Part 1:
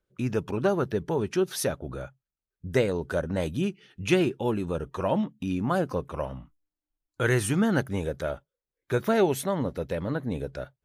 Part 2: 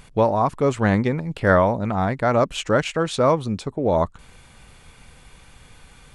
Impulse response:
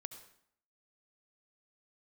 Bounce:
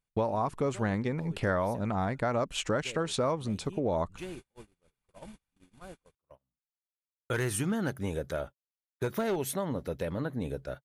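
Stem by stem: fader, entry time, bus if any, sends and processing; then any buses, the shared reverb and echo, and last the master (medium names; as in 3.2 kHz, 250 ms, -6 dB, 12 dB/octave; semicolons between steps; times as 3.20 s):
-2.5 dB, 0.10 s, no send, one-sided clip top -18.5 dBFS; auto duck -16 dB, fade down 0.30 s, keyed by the second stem
-3.5 dB, 0.00 s, no send, none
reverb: none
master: gate -41 dBFS, range -38 dB; treble shelf 8.6 kHz +6 dB; compression 3:1, threshold -28 dBFS, peak gain reduction 10.5 dB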